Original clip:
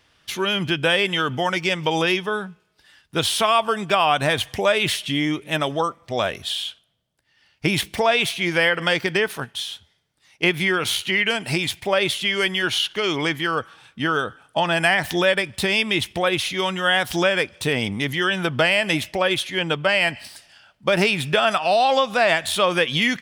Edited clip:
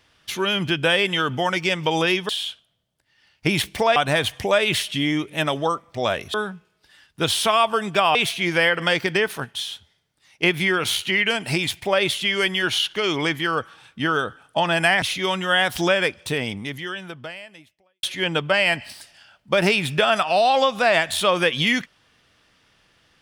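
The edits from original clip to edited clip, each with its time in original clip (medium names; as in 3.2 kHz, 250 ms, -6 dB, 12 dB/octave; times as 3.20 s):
2.29–4.10 s: swap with 6.48–8.15 s
15.02–16.37 s: delete
17.43–19.38 s: fade out quadratic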